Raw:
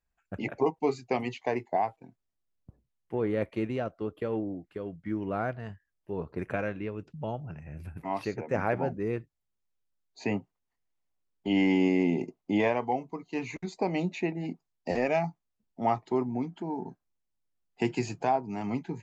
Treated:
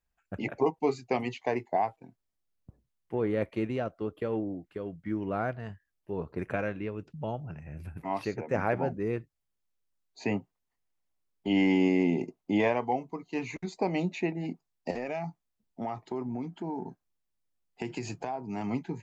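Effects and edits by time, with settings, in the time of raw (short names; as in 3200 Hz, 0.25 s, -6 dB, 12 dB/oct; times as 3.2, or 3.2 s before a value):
14.9–18.55 compressor, threshold -30 dBFS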